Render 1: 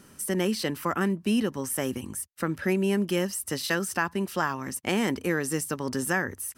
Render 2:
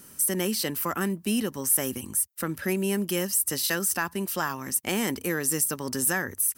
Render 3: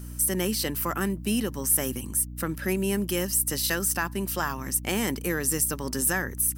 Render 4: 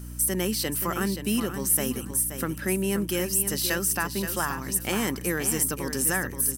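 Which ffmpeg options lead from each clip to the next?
-af "aemphasis=mode=production:type=50fm,acontrast=82,volume=0.376"
-af "aeval=exprs='val(0)+0.0141*(sin(2*PI*60*n/s)+sin(2*PI*2*60*n/s)/2+sin(2*PI*3*60*n/s)/3+sin(2*PI*4*60*n/s)/4+sin(2*PI*5*60*n/s)/5)':c=same"
-af "aecho=1:1:527|1054|1581:0.355|0.071|0.0142"

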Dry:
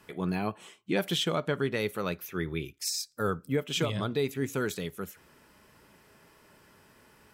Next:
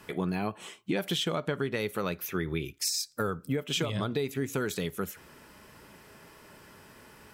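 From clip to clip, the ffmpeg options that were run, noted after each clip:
-af "acompressor=threshold=0.0224:ratio=6,volume=2"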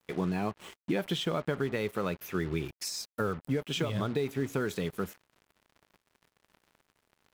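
-af "acrusher=bits=6:mix=0:aa=0.5,highshelf=f=3400:g=-8.5"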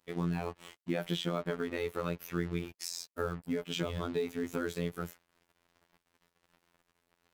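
-af "afftfilt=real='hypot(re,im)*cos(PI*b)':imag='0':win_size=2048:overlap=0.75"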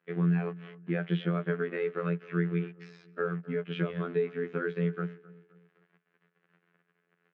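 -filter_complex "[0:a]highpass=f=170:w=0.5412,highpass=f=170:w=1.3066,equalizer=f=170:t=q:w=4:g=10,equalizer=f=270:t=q:w=4:g=-9,equalizer=f=410:t=q:w=4:g=5,equalizer=f=610:t=q:w=4:g=-4,equalizer=f=900:t=q:w=4:g=-10,equalizer=f=1600:t=q:w=4:g=6,lowpass=f=2600:w=0.5412,lowpass=f=2600:w=1.3066,asplit=2[s0][s1];[s1]adelay=260,lowpass=f=2000:p=1,volume=0.1,asplit=2[s2][s3];[s3]adelay=260,lowpass=f=2000:p=1,volume=0.44,asplit=2[s4][s5];[s5]adelay=260,lowpass=f=2000:p=1,volume=0.44[s6];[s0][s2][s4][s6]amix=inputs=4:normalize=0,volume=1.19"

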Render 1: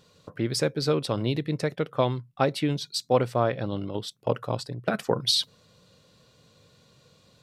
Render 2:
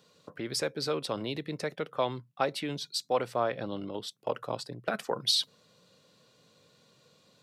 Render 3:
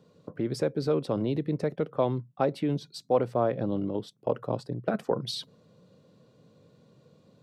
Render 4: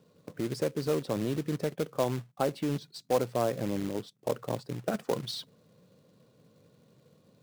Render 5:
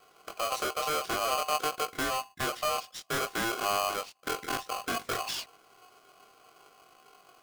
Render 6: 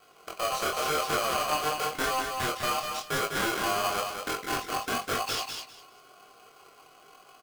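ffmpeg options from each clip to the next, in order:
-filter_complex "[0:a]highpass=170,acrossover=split=500|4000[s0][s1][s2];[s0]alimiter=level_in=1.41:limit=0.0631:level=0:latency=1:release=100,volume=0.708[s3];[s3][s1][s2]amix=inputs=3:normalize=0,volume=0.708"
-af "tiltshelf=f=900:g=10"
-af "acrusher=bits=3:mode=log:mix=0:aa=0.000001,volume=0.708"
-filter_complex "[0:a]flanger=delay=19.5:depth=4:speed=0.57,acrossover=split=220|5200[s0][s1][s2];[s1]asoftclip=type=tanh:threshold=0.0178[s3];[s0][s3][s2]amix=inputs=3:normalize=0,aeval=exprs='val(0)*sgn(sin(2*PI*910*n/s))':c=same,volume=2"
-af "asoftclip=type=hard:threshold=0.0398,flanger=delay=19:depth=7.8:speed=0.94,aecho=1:1:200|400|600:0.562|0.112|0.0225,volume=1.88"

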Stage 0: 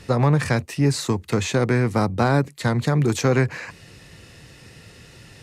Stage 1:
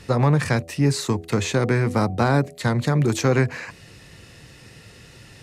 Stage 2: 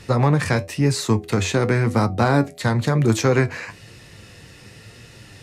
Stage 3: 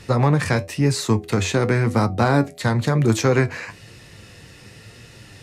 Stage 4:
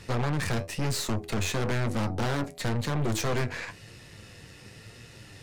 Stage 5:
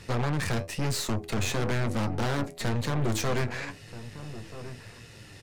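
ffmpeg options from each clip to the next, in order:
-af "bandreject=f=82.71:t=h:w=4,bandreject=f=165.42:t=h:w=4,bandreject=f=248.13:t=h:w=4,bandreject=f=330.84:t=h:w=4,bandreject=f=413.55:t=h:w=4,bandreject=f=496.26:t=h:w=4,bandreject=f=578.97:t=h:w=4,bandreject=f=661.68:t=h:w=4,bandreject=f=744.39:t=h:w=4"
-af "flanger=delay=8.3:depth=2.7:regen=65:speed=1:shape=triangular,volume=2"
-af anull
-af "aeval=exprs='(tanh(20*val(0)+0.75)-tanh(0.75))/20':c=same"
-filter_complex "[0:a]asplit=2[s0][s1];[s1]adelay=1283,volume=0.224,highshelf=f=4000:g=-28.9[s2];[s0][s2]amix=inputs=2:normalize=0"

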